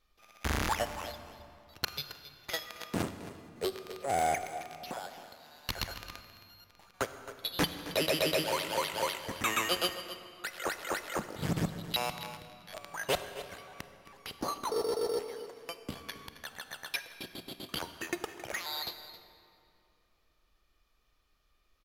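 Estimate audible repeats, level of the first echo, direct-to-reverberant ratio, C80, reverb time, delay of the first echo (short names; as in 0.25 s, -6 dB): 1, -14.0 dB, 8.5 dB, 9.5 dB, 2.7 s, 0.269 s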